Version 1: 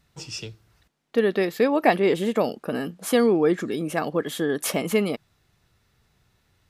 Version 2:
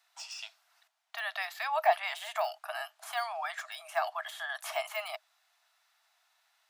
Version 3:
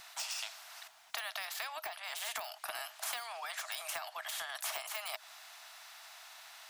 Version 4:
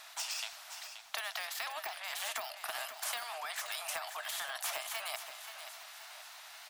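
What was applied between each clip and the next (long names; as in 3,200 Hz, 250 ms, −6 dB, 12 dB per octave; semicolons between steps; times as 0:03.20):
de-essing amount 95%; Chebyshev high-pass filter 630 Hz, order 10; level −1 dB
downward compressor 16 to 1, threshold −41 dBFS, peak gain reduction 23 dB; every bin compressed towards the loudest bin 2 to 1; level +7.5 dB
repeating echo 529 ms, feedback 47%, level −10 dB; pitch modulation by a square or saw wave saw up 3.6 Hz, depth 100 cents; level +1 dB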